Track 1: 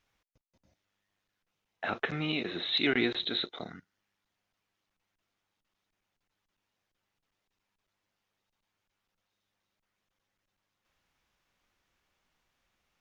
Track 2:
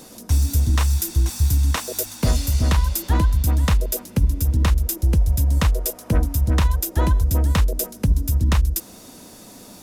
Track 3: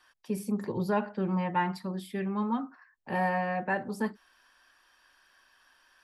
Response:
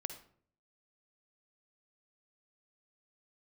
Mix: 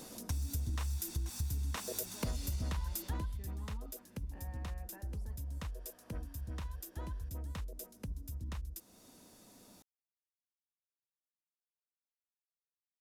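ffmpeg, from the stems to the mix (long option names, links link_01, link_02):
-filter_complex "[1:a]acompressor=threshold=-34dB:ratio=1.5,volume=-7dB,afade=type=out:start_time=2.95:duration=0.45:silence=0.316228[link_01];[2:a]acompressor=mode=upward:threshold=-43dB:ratio=2.5,adelay=1250,volume=-18dB,alimiter=level_in=24dB:limit=-24dB:level=0:latency=1:release=97,volume=-24dB,volume=0dB[link_02];[link_01][link_02]amix=inputs=2:normalize=0,acompressor=threshold=-33dB:ratio=6"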